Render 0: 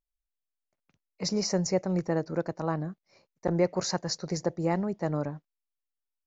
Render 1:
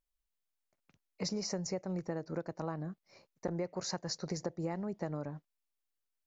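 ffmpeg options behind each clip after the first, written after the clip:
-af "acompressor=threshold=0.0178:ratio=6,volume=1.12"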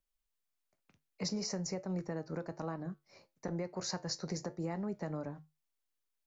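-filter_complex "[0:a]flanger=delay=9.6:depth=1.1:regen=-74:speed=1.1:shape=triangular,acrossover=split=250|870[s0][s1][s2];[s1]alimiter=level_in=5.62:limit=0.0631:level=0:latency=1,volume=0.178[s3];[s0][s3][s2]amix=inputs=3:normalize=0,volume=1.68"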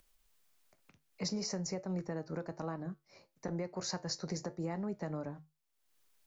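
-af "acompressor=mode=upward:threshold=0.00141:ratio=2.5"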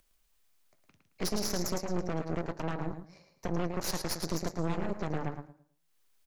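-filter_complex "[0:a]asplit=2[s0][s1];[s1]aecho=0:1:110|220|330|440:0.501|0.155|0.0482|0.0149[s2];[s0][s2]amix=inputs=2:normalize=0,aeval=exprs='0.0631*(cos(1*acos(clip(val(0)/0.0631,-1,1)))-cos(1*PI/2))+0.0251*(cos(6*acos(clip(val(0)/0.0631,-1,1)))-cos(6*PI/2))':c=same"

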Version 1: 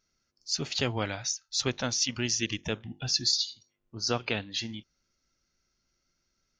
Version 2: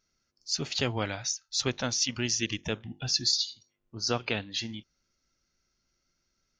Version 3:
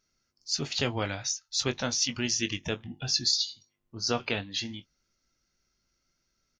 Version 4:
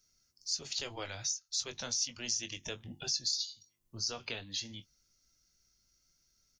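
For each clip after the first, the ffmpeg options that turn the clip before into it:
-af anull
-filter_complex "[0:a]asplit=2[s0][s1];[s1]adelay=21,volume=0.316[s2];[s0][s2]amix=inputs=2:normalize=0"
-filter_complex "[0:a]bass=f=250:g=-9,treble=f=4000:g=14,acrossover=split=170|680[s0][s1][s2];[s0]aeval=exprs='0.0133*sin(PI/2*3.55*val(0)/0.0133)':c=same[s3];[s3][s1][s2]amix=inputs=3:normalize=0,acompressor=threshold=0.0178:ratio=2,volume=0.562"

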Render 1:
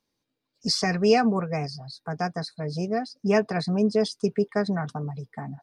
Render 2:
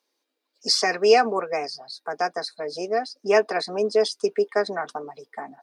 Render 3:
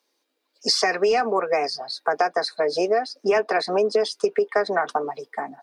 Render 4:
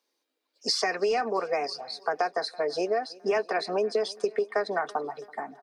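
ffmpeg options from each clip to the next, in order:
-af "highpass=f=340:w=0.5412,highpass=f=340:w=1.3066,volume=1.68"
-filter_complex "[0:a]acrossover=split=320|3400[s0][s1][s2];[s1]dynaudnorm=f=150:g=9:m=2.66[s3];[s0][s3][s2]amix=inputs=3:normalize=0,apsyclip=2.51,acompressor=threshold=0.224:ratio=10,volume=0.631"
-af "aecho=1:1:331|662|993:0.0708|0.0368|0.0191,volume=0.501"

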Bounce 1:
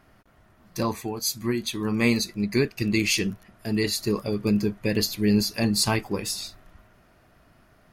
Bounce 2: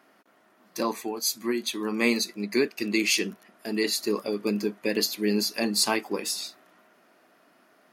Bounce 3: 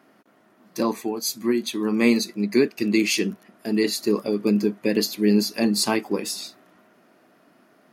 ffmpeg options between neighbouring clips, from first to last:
-af "highpass=f=240:w=0.5412,highpass=f=240:w=1.3066"
-af "lowshelf=f=350:g=11"

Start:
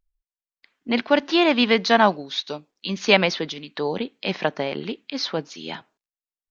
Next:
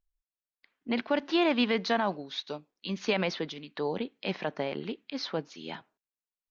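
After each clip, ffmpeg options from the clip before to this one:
-af "highshelf=f=4200:g=-7.5,alimiter=limit=0.282:level=0:latency=1:release=41,volume=0.501"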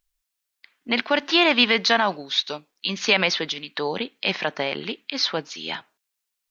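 -af "tiltshelf=f=970:g=-6.5,volume=2.66"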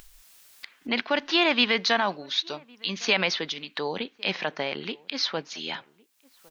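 -filter_complex "[0:a]acompressor=mode=upward:threshold=0.0562:ratio=2.5,asplit=2[s0][s1];[s1]adelay=1108,volume=0.0562,highshelf=f=4000:g=-24.9[s2];[s0][s2]amix=inputs=2:normalize=0,volume=0.631"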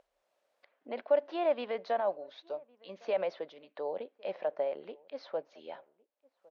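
-af "bandpass=f=580:t=q:w=5:csg=0,volume=1.41"

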